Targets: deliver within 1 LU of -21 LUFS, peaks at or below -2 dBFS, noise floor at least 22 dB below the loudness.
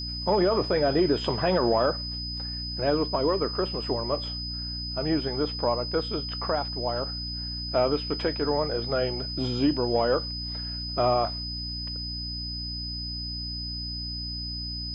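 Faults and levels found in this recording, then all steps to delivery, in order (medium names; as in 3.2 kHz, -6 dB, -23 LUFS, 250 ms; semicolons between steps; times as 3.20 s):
hum 60 Hz; highest harmonic 300 Hz; hum level -34 dBFS; steady tone 5 kHz; tone level -33 dBFS; loudness -27.5 LUFS; peak level -12.0 dBFS; loudness target -21.0 LUFS
-> de-hum 60 Hz, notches 5; band-stop 5 kHz, Q 30; trim +6.5 dB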